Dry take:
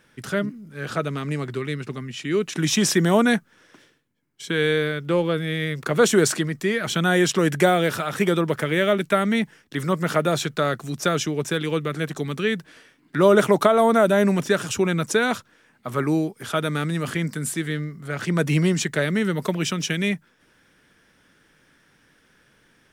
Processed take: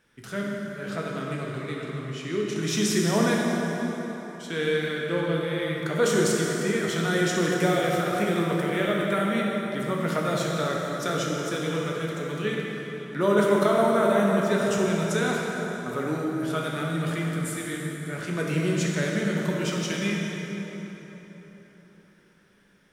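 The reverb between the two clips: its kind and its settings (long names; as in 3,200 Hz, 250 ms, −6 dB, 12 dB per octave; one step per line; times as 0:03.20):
dense smooth reverb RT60 4.2 s, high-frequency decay 0.65×, DRR −3 dB
level −8.5 dB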